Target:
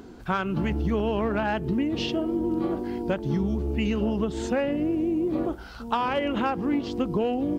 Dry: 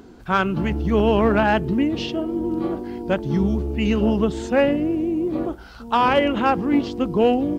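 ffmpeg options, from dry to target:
-af "acompressor=threshold=-22dB:ratio=6"

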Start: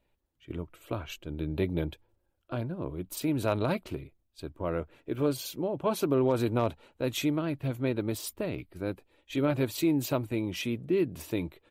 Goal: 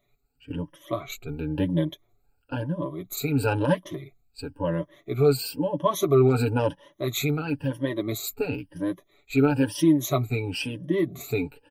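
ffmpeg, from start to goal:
-af "afftfilt=real='re*pow(10,21/40*sin(2*PI*(1.2*log(max(b,1)*sr/1024/100)/log(2)-(0.99)*(pts-256)/sr)))':imag='im*pow(10,21/40*sin(2*PI*(1.2*log(max(b,1)*sr/1024/100)/log(2)-(0.99)*(pts-256)/sr)))':win_size=1024:overlap=0.75,aecho=1:1:7:0.67,volume=-1dB"

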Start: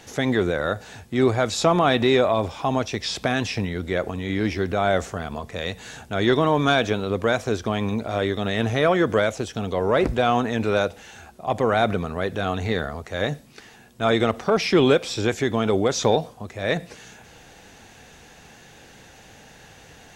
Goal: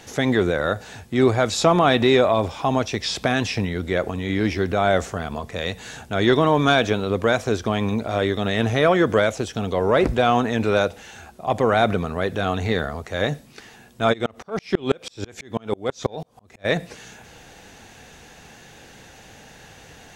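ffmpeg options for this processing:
-filter_complex "[0:a]asplit=3[a][b][c];[a]afade=t=out:st=14.12:d=0.02[d];[b]aeval=exprs='val(0)*pow(10,-35*if(lt(mod(-6.1*n/s,1),2*abs(-6.1)/1000),1-mod(-6.1*n/s,1)/(2*abs(-6.1)/1000),(mod(-6.1*n/s,1)-2*abs(-6.1)/1000)/(1-2*abs(-6.1)/1000))/20)':c=same,afade=t=in:st=14.12:d=0.02,afade=t=out:st=16.64:d=0.02[e];[c]afade=t=in:st=16.64:d=0.02[f];[d][e][f]amix=inputs=3:normalize=0,volume=2dB"

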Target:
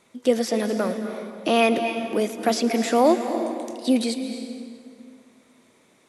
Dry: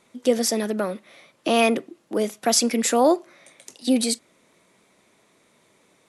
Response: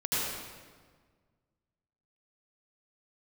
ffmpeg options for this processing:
-filter_complex "[0:a]acrossover=split=4100[a][b];[b]acompressor=threshold=-35dB:ratio=4:attack=1:release=60[c];[a][c]amix=inputs=2:normalize=0,asplit=2[d][e];[1:a]atrim=start_sample=2205,asetrate=32193,aresample=44100,adelay=111[f];[e][f]afir=irnorm=-1:irlink=0,volume=-18.5dB[g];[d][g]amix=inputs=2:normalize=0"

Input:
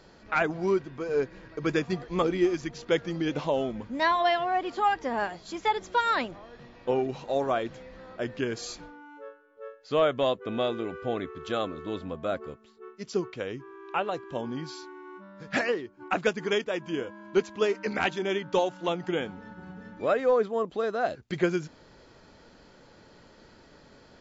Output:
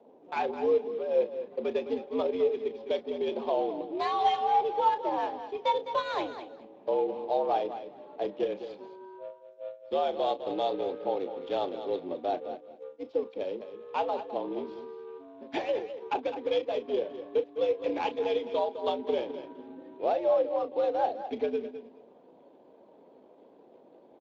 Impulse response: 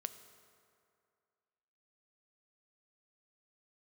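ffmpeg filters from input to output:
-filter_complex "[0:a]tiltshelf=f=740:g=9,acrossover=split=1600[a][b];[b]dynaudnorm=f=260:g=3:m=7dB[c];[a][c]amix=inputs=2:normalize=0,alimiter=limit=-15.5dB:level=0:latency=1:release=351,adynamicsmooth=sensitivity=8:basefreq=1.1k,highpass=220,equalizer=f=240:t=q:w=4:g=-4,equalizer=f=400:t=q:w=4:g=3,equalizer=f=770:t=q:w=4:g=7,equalizer=f=1.3k:t=q:w=4:g=-8,equalizer=f=1.9k:t=q:w=4:g=-9,equalizer=f=2.7k:t=q:w=4:g=-9,lowpass=f=3.4k:w=0.5412,lowpass=f=3.4k:w=1.3066,aexciter=amount=5.1:drive=1.8:freq=2.3k,asplit=2[d][e];[e]adelay=34,volume=-12dB[f];[d][f]amix=inputs=2:normalize=0,asplit=2[g][h];[h]aecho=0:1:208|416:0.282|0.0507[i];[g][i]amix=inputs=2:normalize=0,afreqshift=82,volume=-4dB" -ar 16000 -c:a libspeex -b:a 17k

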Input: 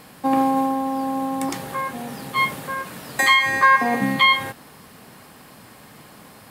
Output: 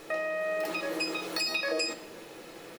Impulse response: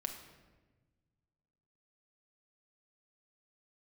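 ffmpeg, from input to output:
-filter_complex "[0:a]lowshelf=f=300:g=8,acompressor=threshold=-25dB:ratio=4,asplit=2[a][b];[b]adelay=14,volume=-10.5dB[c];[a][c]amix=inputs=2:normalize=0[d];[1:a]atrim=start_sample=2205[e];[d][e]afir=irnorm=-1:irlink=0,asetrate=103194,aresample=44100,volume=-4.5dB"

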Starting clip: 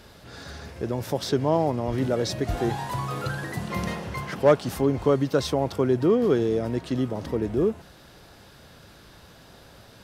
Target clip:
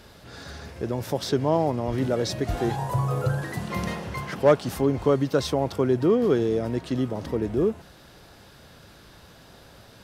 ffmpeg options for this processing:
-filter_complex "[0:a]asettb=1/sr,asplit=3[a][b][c];[a]atrim=end=2.764[d];[b]atrim=start=2.76:end=3.42,asetpts=PTS-STARTPTS,afade=t=in:d=0.004:c=qsin,afade=t=out:st=0.656:d=0.004:c=qsin,equalizer=f=125:t=o:w=1:g=9,equalizer=f=250:t=o:w=1:g=-7,equalizer=f=500:t=o:w=1:g=8,equalizer=f=2k:t=o:w=1:g=-5,equalizer=f=4k:t=o:w=1:g=-7[e];[c]atrim=start=3.416[f];[d][e]acrossfade=d=0.004:c1=hsin:c2=qsin[g];[g][f]acrossfade=d=0.004:c1=qsin:c2=hsin"

